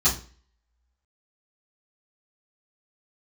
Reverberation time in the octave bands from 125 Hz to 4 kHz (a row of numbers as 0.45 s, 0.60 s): 0.40 s, 0.45 s, 0.40 s, 0.40 s, 0.40 s, 0.35 s